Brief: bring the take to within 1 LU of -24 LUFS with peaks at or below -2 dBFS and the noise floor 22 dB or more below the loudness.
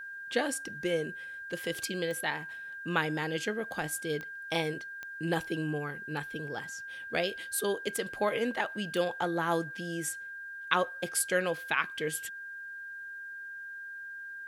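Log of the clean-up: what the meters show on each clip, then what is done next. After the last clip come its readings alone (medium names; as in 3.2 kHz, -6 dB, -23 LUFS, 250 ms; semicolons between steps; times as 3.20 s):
clicks found 4; steady tone 1.6 kHz; tone level -40 dBFS; loudness -33.5 LUFS; peak level -9.0 dBFS; loudness target -24.0 LUFS
-> de-click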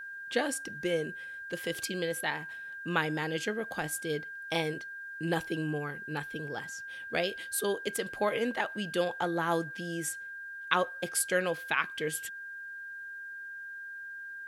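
clicks found 0; steady tone 1.6 kHz; tone level -40 dBFS
-> band-stop 1.6 kHz, Q 30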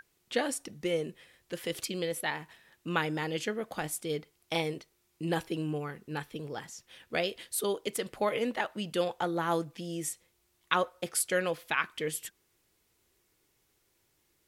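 steady tone not found; loudness -33.5 LUFS; peak level -9.5 dBFS; loudness target -24.0 LUFS
-> trim +9.5 dB; peak limiter -2 dBFS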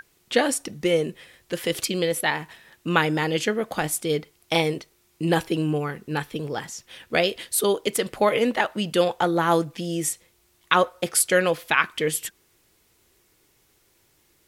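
loudness -24.0 LUFS; peak level -2.0 dBFS; noise floor -64 dBFS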